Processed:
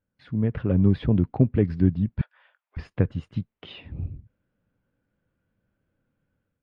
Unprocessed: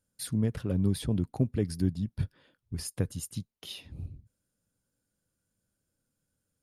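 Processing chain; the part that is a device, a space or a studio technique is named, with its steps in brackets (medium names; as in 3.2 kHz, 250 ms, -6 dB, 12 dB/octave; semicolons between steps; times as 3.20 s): 2.21–2.77 s: steep high-pass 680 Hz 36 dB/octave; action camera in a waterproof case (low-pass 2.6 kHz 24 dB/octave; level rider gain up to 8 dB; AAC 64 kbps 32 kHz)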